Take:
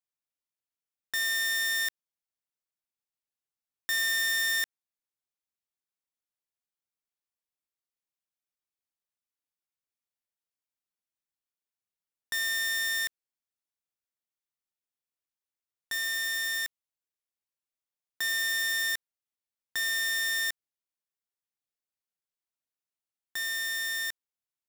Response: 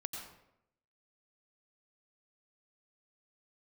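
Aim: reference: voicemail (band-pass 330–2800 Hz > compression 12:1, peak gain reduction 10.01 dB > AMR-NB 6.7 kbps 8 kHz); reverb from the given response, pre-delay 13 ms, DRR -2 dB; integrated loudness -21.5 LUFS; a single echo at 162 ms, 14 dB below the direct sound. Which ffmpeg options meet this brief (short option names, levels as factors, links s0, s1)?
-filter_complex "[0:a]aecho=1:1:162:0.2,asplit=2[s0][s1];[1:a]atrim=start_sample=2205,adelay=13[s2];[s1][s2]afir=irnorm=-1:irlink=0,volume=1.33[s3];[s0][s3]amix=inputs=2:normalize=0,highpass=330,lowpass=2800,acompressor=threshold=0.0126:ratio=12,volume=13.3" -ar 8000 -c:a libopencore_amrnb -b:a 6700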